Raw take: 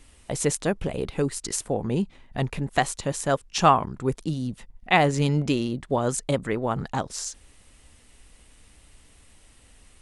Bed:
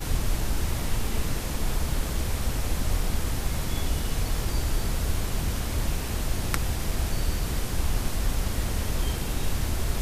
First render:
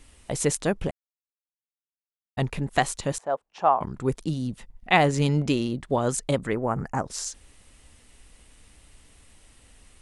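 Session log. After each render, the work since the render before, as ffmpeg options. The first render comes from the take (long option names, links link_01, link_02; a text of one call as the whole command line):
ffmpeg -i in.wav -filter_complex "[0:a]asettb=1/sr,asplit=3[link_01][link_02][link_03];[link_01]atrim=end=3.184[link_04];[link_02]atrim=start=3.18:end=3.81,asetpts=PTS-STARTPTS,afade=type=in:duration=0.004:curve=qsin,afade=type=out:start_time=0.626:duration=0.004:curve=qsin,bandpass=frequency=740:width_type=q:width=1.9[link_05];[link_03]atrim=start=3.806[link_06];[link_04][link_05]acrossfade=duration=0.004:curve1=hsin:curve2=qsin[link_07];[link_07][link_06]acrossfade=duration=0.004:curve1=qsin:curve2=hsin,asplit=3[link_08][link_09][link_10];[link_08]afade=type=out:start_time=6.53:duration=0.02[link_11];[link_09]asuperstop=centerf=3600:order=4:qfactor=1.1,afade=type=in:start_time=6.53:duration=0.02,afade=type=out:start_time=7.05:duration=0.02[link_12];[link_10]afade=type=in:start_time=7.05:duration=0.02[link_13];[link_11][link_12][link_13]amix=inputs=3:normalize=0,asplit=3[link_14][link_15][link_16];[link_14]atrim=end=0.91,asetpts=PTS-STARTPTS,afade=type=out:start_time=0.906:duration=0.004:curve=hsin[link_17];[link_15]atrim=start=0.91:end=2.37,asetpts=PTS-STARTPTS,volume=0[link_18];[link_16]atrim=start=2.37,asetpts=PTS-STARTPTS,afade=type=in:duration=0.004:curve=hsin[link_19];[link_17][link_18][link_19]concat=n=3:v=0:a=1" out.wav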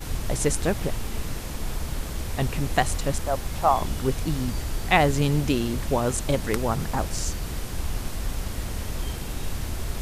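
ffmpeg -i in.wav -i bed.wav -filter_complex "[1:a]volume=-3dB[link_01];[0:a][link_01]amix=inputs=2:normalize=0" out.wav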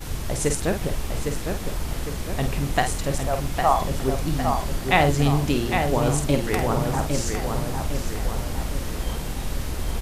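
ffmpeg -i in.wav -filter_complex "[0:a]asplit=2[link_01][link_02];[link_02]adelay=49,volume=-7.5dB[link_03];[link_01][link_03]amix=inputs=2:normalize=0,asplit=2[link_04][link_05];[link_05]adelay=807,lowpass=frequency=3500:poles=1,volume=-5dB,asplit=2[link_06][link_07];[link_07]adelay=807,lowpass=frequency=3500:poles=1,volume=0.53,asplit=2[link_08][link_09];[link_09]adelay=807,lowpass=frequency=3500:poles=1,volume=0.53,asplit=2[link_10][link_11];[link_11]adelay=807,lowpass=frequency=3500:poles=1,volume=0.53,asplit=2[link_12][link_13];[link_13]adelay=807,lowpass=frequency=3500:poles=1,volume=0.53,asplit=2[link_14][link_15];[link_15]adelay=807,lowpass=frequency=3500:poles=1,volume=0.53,asplit=2[link_16][link_17];[link_17]adelay=807,lowpass=frequency=3500:poles=1,volume=0.53[link_18];[link_04][link_06][link_08][link_10][link_12][link_14][link_16][link_18]amix=inputs=8:normalize=0" out.wav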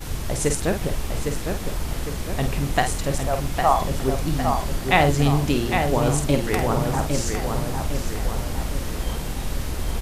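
ffmpeg -i in.wav -af "volume=1dB" out.wav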